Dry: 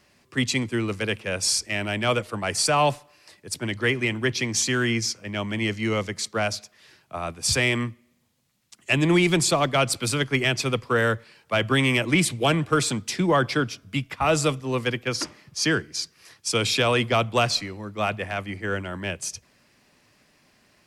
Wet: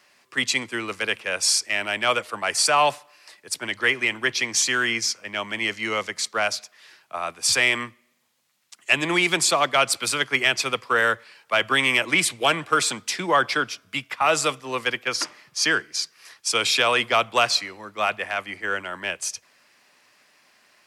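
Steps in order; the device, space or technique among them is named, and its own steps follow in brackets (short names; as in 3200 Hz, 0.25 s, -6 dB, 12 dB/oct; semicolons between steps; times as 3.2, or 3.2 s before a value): filter by subtraction (in parallel: LPF 1200 Hz 12 dB/oct + phase invert); on the sum: gain +2.5 dB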